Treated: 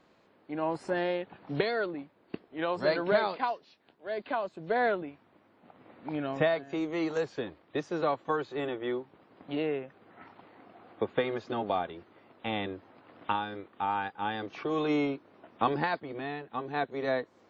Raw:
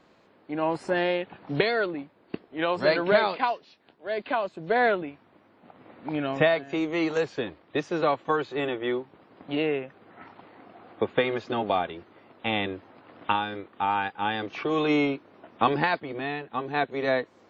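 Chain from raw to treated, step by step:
dynamic equaliser 2,600 Hz, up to −5 dB, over −44 dBFS, Q 1.5
level −4.5 dB

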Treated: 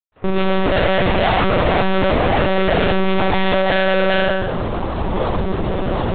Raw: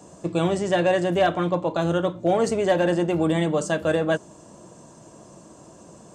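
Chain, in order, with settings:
fade in at the beginning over 1.19 s
reverb reduction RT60 2 s
reversed playback
downward compressor 10 to 1, threshold −33 dBFS, peak gain reduction 17.5 dB
reversed playback
delay with pitch and tempo change per echo 214 ms, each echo +3 semitones, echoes 3, each echo −6 dB
on a send: flutter between parallel walls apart 6.3 metres, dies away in 0.76 s
on the sum: fuzz pedal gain 50 dB, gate −56 dBFS
one-pitch LPC vocoder at 8 kHz 190 Hz
one half of a high-frequency compander decoder only
level −1 dB

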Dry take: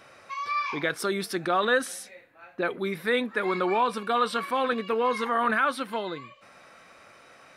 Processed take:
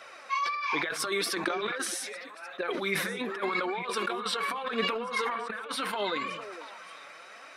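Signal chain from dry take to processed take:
meter weighting curve A
compressor whose output falls as the input rises −32 dBFS, ratio −0.5
flanger 0.78 Hz, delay 1.4 ms, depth 5.9 ms, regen +36%
echo through a band-pass that steps 227 ms, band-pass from 150 Hz, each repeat 1.4 octaves, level −7 dB
level that may fall only so fast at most 37 dB per second
level +3 dB

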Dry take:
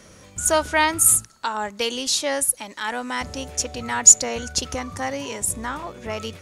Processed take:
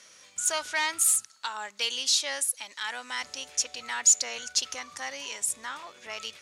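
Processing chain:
soft clipping −12.5 dBFS, distortion −8 dB
resonant band-pass 4,300 Hz, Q 0.63

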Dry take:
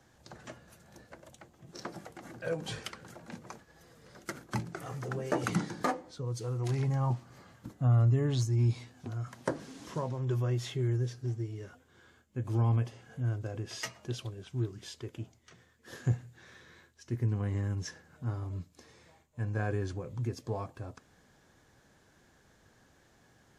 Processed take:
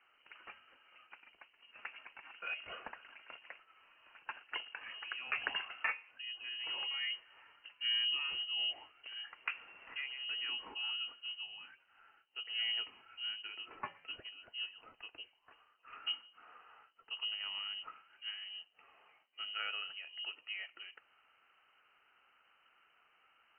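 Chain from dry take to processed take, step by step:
voice inversion scrambler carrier 3,000 Hz
three-way crossover with the lows and the highs turned down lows −13 dB, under 300 Hz, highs −21 dB, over 2,100 Hz

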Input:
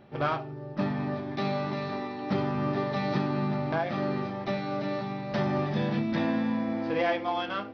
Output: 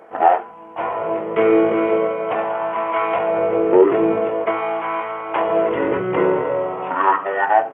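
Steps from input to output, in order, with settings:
in parallel at 0 dB: brickwall limiter −23 dBFS, peak gain reduction 7 dB
on the sum: auto-filter high-pass sine 0.45 Hz 720–1,600 Hz
pitch shifter −10 semitones
level +9 dB

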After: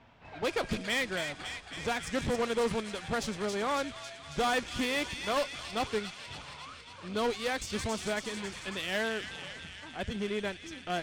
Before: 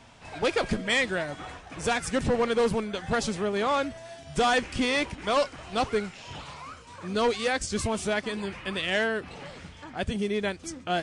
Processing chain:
low-pass that shuts in the quiet parts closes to 2,800 Hz, open at −21 dBFS
delay with a high-pass on its return 275 ms, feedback 72%, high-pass 2,400 Hz, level −4 dB
harmonic generator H 6 −18 dB, 8 −17 dB, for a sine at −14 dBFS
level −6 dB

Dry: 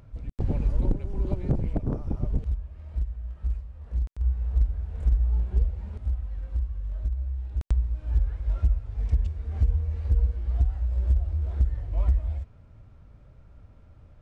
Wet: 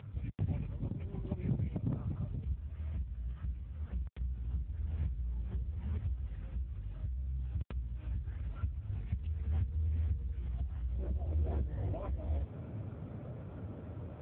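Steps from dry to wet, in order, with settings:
parametric band 400 Hz −11 dB 2.5 octaves, from 0:10.99 +6.5 dB
downward compressor 2.5 to 1, threshold −34 dBFS, peak gain reduction 12 dB
brickwall limiter −30.5 dBFS, peak gain reduction 8 dB
high-frequency loss of the air 98 metres
level +9.5 dB
AMR narrowband 7.95 kbit/s 8,000 Hz

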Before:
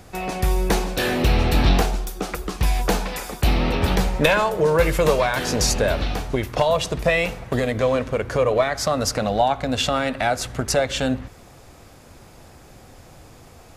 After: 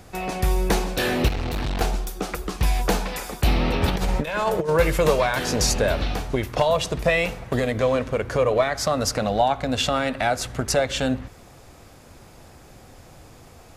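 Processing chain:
0:01.28–0:01.81: tube saturation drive 22 dB, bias 0.7
0:03.88–0:04.69: compressor whose output falls as the input rises −21 dBFS, ratio −0.5
level −1 dB

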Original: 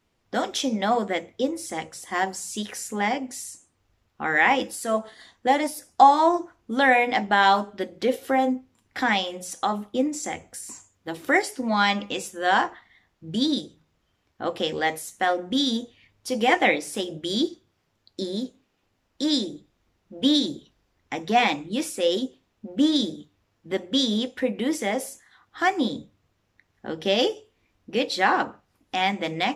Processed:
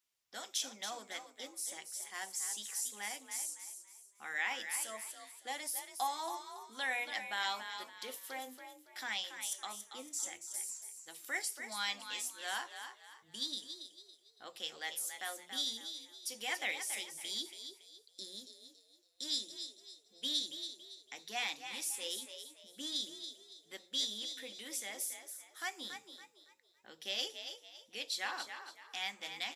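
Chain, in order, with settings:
first-order pre-emphasis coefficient 0.97
echo with shifted repeats 280 ms, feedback 34%, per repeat +46 Hz, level −8.5 dB
level −4 dB

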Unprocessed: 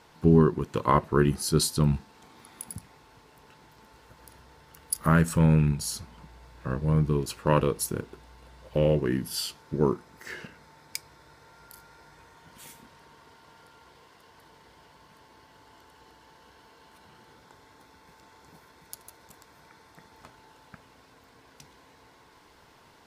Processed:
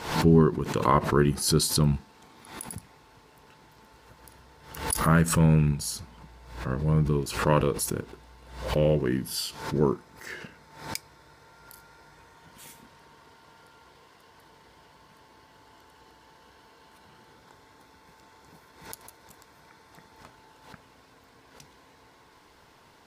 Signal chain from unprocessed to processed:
background raised ahead of every attack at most 91 dB per second

